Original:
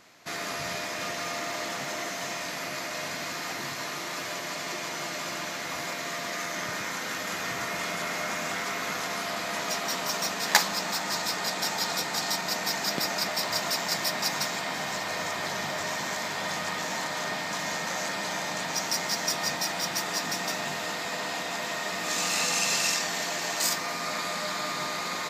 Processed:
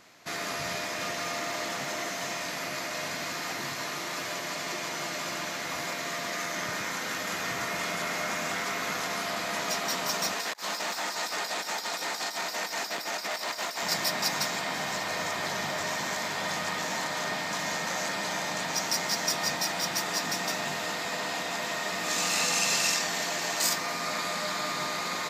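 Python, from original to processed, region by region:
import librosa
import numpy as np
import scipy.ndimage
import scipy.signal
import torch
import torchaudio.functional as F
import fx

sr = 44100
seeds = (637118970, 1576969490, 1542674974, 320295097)

y = fx.chain(x, sr, fx.highpass(hz=310.0, slope=12),
    fx.over_compress(threshold_db=-32.0, ratio=-0.5),
    fx.transformer_sat(knee_hz=2500.0), at=(10.33, 13.83))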